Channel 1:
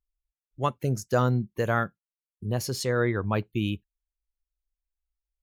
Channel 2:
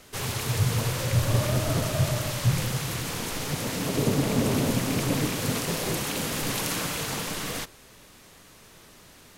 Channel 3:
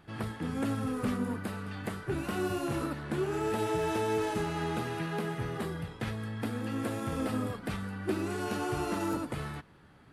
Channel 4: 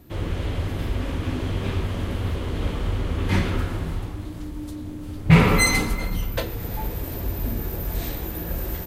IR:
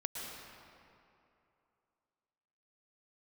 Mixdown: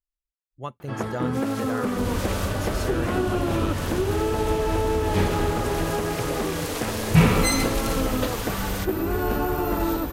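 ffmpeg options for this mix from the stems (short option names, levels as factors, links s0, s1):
-filter_complex "[0:a]volume=0.422,asplit=2[s0][s1];[1:a]highpass=540,adelay=1200,volume=0.841[s2];[2:a]equalizer=f=1000:w=0.51:g=6.5,adelay=800,volume=1.26[s3];[3:a]bandreject=f=2100:w=12,adelay=1850,volume=0.75[s4];[s1]apad=whole_len=466576[s5];[s2][s5]sidechaincompress=threshold=0.0178:ratio=8:attack=16:release=552[s6];[s6][s3]amix=inputs=2:normalize=0,equalizer=f=390:t=o:w=2.1:g=7,acompressor=threshold=0.0794:ratio=6,volume=1[s7];[s0][s4][s7]amix=inputs=3:normalize=0"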